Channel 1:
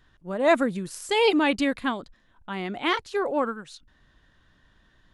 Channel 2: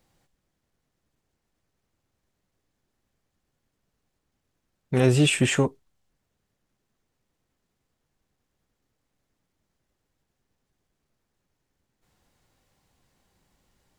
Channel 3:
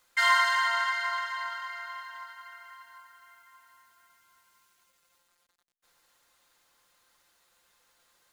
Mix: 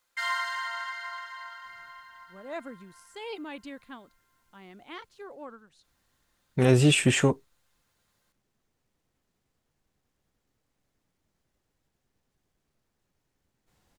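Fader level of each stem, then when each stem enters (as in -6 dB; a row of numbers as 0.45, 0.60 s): -18.0, -0.5, -7.5 dB; 2.05, 1.65, 0.00 s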